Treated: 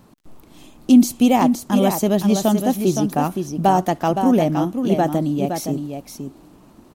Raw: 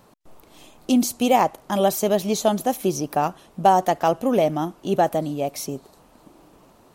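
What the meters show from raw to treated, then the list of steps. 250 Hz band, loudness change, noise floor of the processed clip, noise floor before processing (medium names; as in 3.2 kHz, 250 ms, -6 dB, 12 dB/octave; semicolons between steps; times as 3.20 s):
+8.0 dB, +3.5 dB, -49 dBFS, -54 dBFS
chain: crackle 50 per s -48 dBFS; resonant low shelf 370 Hz +6 dB, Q 1.5; delay 516 ms -7 dB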